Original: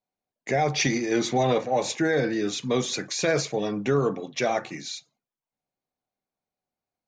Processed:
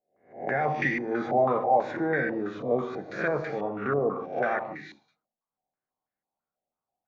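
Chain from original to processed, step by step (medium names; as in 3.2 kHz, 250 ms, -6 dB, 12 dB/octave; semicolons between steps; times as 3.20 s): reverse spectral sustain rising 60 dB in 0.46 s; gated-style reverb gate 180 ms flat, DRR 6.5 dB; step-sequenced low-pass 6.1 Hz 670–1800 Hz; trim -7.5 dB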